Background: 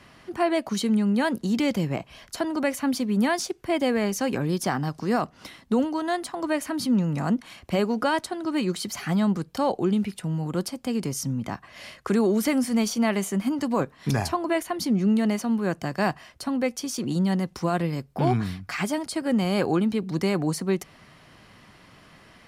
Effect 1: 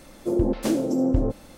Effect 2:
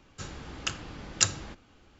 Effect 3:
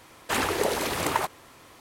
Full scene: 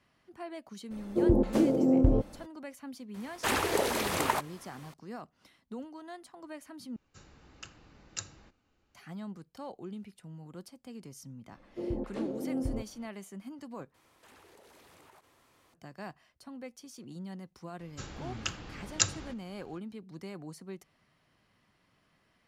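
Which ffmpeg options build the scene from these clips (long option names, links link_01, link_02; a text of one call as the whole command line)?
ffmpeg -i bed.wav -i cue0.wav -i cue1.wav -i cue2.wav -filter_complex "[1:a]asplit=2[link_01][link_02];[3:a]asplit=2[link_03][link_04];[2:a]asplit=2[link_05][link_06];[0:a]volume=-19dB[link_07];[link_01]highshelf=frequency=2400:gain=-10.5[link_08];[link_05]bandreject=frequency=3300:width=14[link_09];[link_02]lowpass=2800[link_10];[link_04]acompressor=threshold=-44dB:ratio=4:attack=1.2:release=54:knee=1:detection=peak[link_11];[link_07]asplit=3[link_12][link_13][link_14];[link_12]atrim=end=6.964[link_15];[link_09]atrim=end=1.99,asetpts=PTS-STARTPTS,volume=-15dB[link_16];[link_13]atrim=start=8.946:end=13.944[link_17];[link_11]atrim=end=1.8,asetpts=PTS-STARTPTS,volume=-14.5dB[link_18];[link_14]atrim=start=15.736[link_19];[link_08]atrim=end=1.57,asetpts=PTS-STARTPTS,volume=-1.5dB,afade=type=in:duration=0.02,afade=type=out:start_time=1.55:duration=0.02,adelay=900[link_20];[link_03]atrim=end=1.8,asetpts=PTS-STARTPTS,volume=-3dB,afade=type=in:duration=0.004:curve=hsin,afade=type=out:start_time=1.796:duration=0.004:curve=hsin,adelay=3140[link_21];[link_10]atrim=end=1.57,asetpts=PTS-STARTPTS,volume=-12.5dB,afade=type=in:duration=0.004:curve=hsin,afade=type=out:start_time=1.566:duration=0.004:curve=hsin,adelay=11510[link_22];[link_06]atrim=end=1.99,asetpts=PTS-STARTPTS,volume=-3dB,afade=type=in:duration=0.004:curve=hsin,afade=type=out:start_time=1.986:duration=0.004:curve=hsin,adelay=17790[link_23];[link_15][link_16]acrossfade=duration=0.004:curve1=hsin:curve2=hsin[link_24];[link_24][link_17]acrossfade=duration=0.004:curve1=hsin:curve2=hsin[link_25];[link_25][link_18]acrossfade=duration=0.004:curve1=hsin:curve2=hsin[link_26];[link_26][link_19]acrossfade=duration=0.004:curve1=hsin:curve2=hsin[link_27];[link_27][link_20][link_21][link_22][link_23]amix=inputs=5:normalize=0" out.wav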